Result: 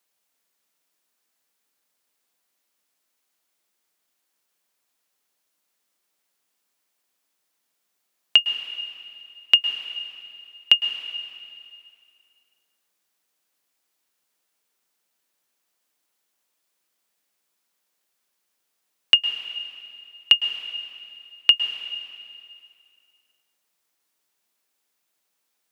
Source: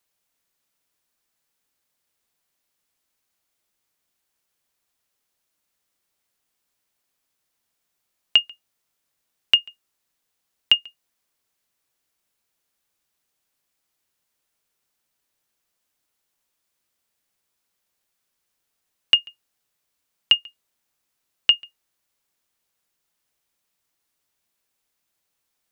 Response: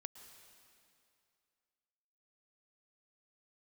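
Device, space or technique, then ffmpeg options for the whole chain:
stairwell: -filter_complex "[1:a]atrim=start_sample=2205[a];[0:a][a]afir=irnorm=-1:irlink=0,highpass=200,volume=6.5dB"

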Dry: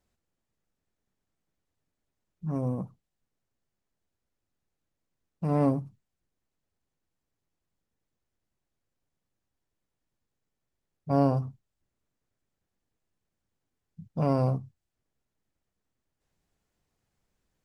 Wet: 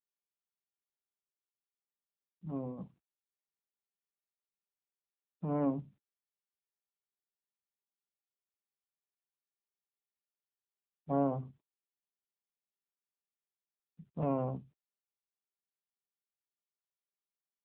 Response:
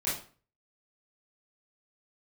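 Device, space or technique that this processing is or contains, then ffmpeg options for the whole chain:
mobile call with aggressive noise cancelling: -af "highpass=f=150:w=0.5412,highpass=f=150:w=1.3066,afftdn=nr=30:nf=-56,volume=-5dB" -ar 8000 -c:a libopencore_amrnb -b:a 7950

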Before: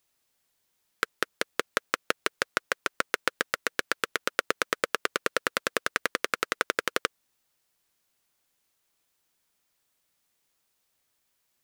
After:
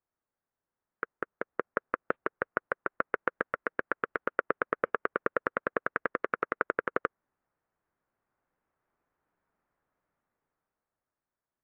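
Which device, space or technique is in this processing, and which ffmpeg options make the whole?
action camera in a waterproof case: -filter_complex "[0:a]asettb=1/sr,asplit=3[a][b][c];[a]atrim=end=1.174[d];[b]atrim=start=1.17:end=2.88,asetpts=PTS-STARTPTS,afade=t=in:d=0.004:c=qsin,afade=t=out:st=1.706:d=0.004:c=qsin,aemphasis=mode=reproduction:type=50kf[e];[c]atrim=start=2.876[f];[d][e]acrossfade=d=0.004:c1=hsin:c2=qsin[g];[g][f]acrossfade=d=0.004:c1=qsin:c2=hsin,lowpass=f=1.6k:w=0.5412,lowpass=f=1.6k:w=1.3066,dynaudnorm=f=160:g=17:m=11dB,volume=-7.5dB" -ar 22050 -c:a aac -b:a 48k

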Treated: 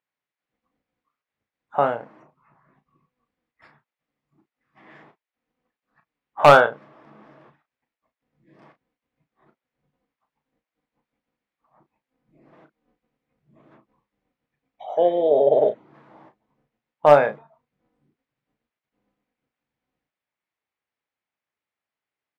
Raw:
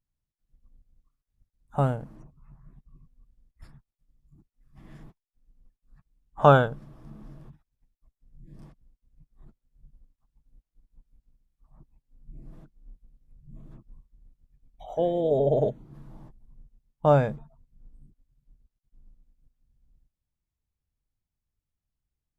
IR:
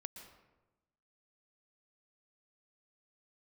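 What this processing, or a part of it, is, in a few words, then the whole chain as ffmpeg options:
megaphone: -filter_complex "[0:a]highpass=500,lowpass=2.7k,equalizer=f=2.1k:t=o:w=0.56:g=4.5,asoftclip=type=hard:threshold=-13.5dB,asplit=2[a][b];[b]adelay=34,volume=-9.5dB[c];[a][c]amix=inputs=2:normalize=0,volume=9dB"

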